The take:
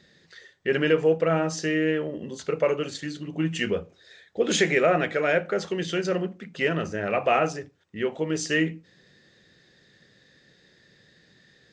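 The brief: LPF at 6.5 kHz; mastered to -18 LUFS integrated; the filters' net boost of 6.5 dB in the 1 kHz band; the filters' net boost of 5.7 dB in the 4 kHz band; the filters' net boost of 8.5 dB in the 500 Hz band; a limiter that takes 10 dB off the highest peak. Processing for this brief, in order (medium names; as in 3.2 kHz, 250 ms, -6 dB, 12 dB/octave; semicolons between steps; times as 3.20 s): low-pass 6.5 kHz; peaking EQ 500 Hz +8.5 dB; peaking EQ 1 kHz +5.5 dB; peaking EQ 4 kHz +8 dB; trim +5 dB; peak limiter -7 dBFS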